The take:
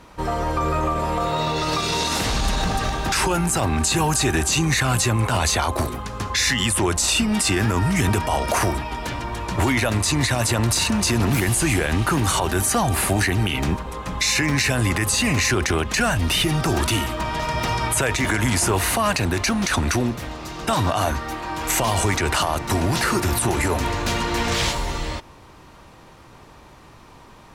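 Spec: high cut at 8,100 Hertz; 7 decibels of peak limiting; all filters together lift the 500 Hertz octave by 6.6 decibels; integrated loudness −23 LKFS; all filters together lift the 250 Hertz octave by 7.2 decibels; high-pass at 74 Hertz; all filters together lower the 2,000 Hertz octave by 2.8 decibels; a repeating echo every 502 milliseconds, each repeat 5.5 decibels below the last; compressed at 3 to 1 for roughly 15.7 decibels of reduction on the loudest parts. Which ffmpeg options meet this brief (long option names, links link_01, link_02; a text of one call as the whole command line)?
ffmpeg -i in.wav -af "highpass=74,lowpass=8100,equalizer=frequency=250:width_type=o:gain=7.5,equalizer=frequency=500:width_type=o:gain=6.5,equalizer=frequency=2000:width_type=o:gain=-4,acompressor=threshold=-34dB:ratio=3,alimiter=level_in=1.5dB:limit=-24dB:level=0:latency=1,volume=-1.5dB,aecho=1:1:502|1004|1506|2008|2510|3012|3514:0.531|0.281|0.149|0.079|0.0419|0.0222|0.0118,volume=10dB" out.wav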